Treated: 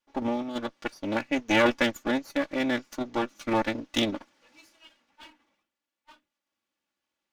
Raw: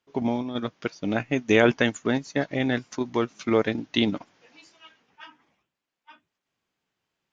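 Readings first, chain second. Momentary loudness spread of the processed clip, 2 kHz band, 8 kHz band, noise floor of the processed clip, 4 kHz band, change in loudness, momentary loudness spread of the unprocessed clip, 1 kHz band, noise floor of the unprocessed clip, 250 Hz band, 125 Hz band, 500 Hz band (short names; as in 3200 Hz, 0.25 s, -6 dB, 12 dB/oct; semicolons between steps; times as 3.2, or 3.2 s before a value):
11 LU, -1.5 dB, n/a, under -85 dBFS, -0.5 dB, -2.5 dB, 11 LU, +1.5 dB, under -85 dBFS, -3.0 dB, -9.0 dB, -4.0 dB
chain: minimum comb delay 3.5 ms; low shelf 96 Hz -10 dB; gain -2 dB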